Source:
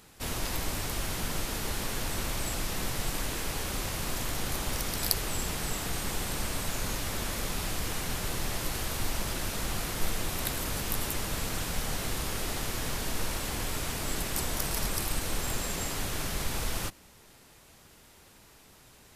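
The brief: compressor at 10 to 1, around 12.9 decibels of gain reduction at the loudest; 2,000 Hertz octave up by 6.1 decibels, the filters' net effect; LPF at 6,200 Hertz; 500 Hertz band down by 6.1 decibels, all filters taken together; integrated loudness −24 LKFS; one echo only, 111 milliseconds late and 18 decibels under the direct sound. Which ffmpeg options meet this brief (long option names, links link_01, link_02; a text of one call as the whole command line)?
ffmpeg -i in.wav -af "lowpass=6200,equalizer=frequency=500:width_type=o:gain=-8.5,equalizer=frequency=2000:width_type=o:gain=8,acompressor=threshold=-37dB:ratio=10,aecho=1:1:111:0.126,volume=17.5dB" out.wav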